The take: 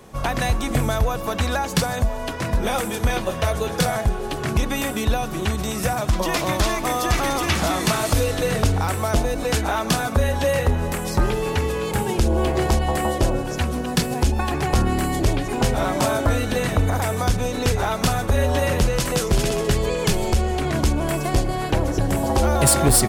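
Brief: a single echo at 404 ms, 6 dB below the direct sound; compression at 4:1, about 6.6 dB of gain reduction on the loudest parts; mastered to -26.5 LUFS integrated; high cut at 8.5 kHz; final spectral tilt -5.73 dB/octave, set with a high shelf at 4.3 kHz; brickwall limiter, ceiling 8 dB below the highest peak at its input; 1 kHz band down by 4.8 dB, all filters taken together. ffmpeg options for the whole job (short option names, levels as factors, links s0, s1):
-af "lowpass=8500,equalizer=f=1000:t=o:g=-6.5,highshelf=f=4300:g=-7,acompressor=threshold=0.0794:ratio=4,alimiter=limit=0.0944:level=0:latency=1,aecho=1:1:404:0.501,volume=1.26"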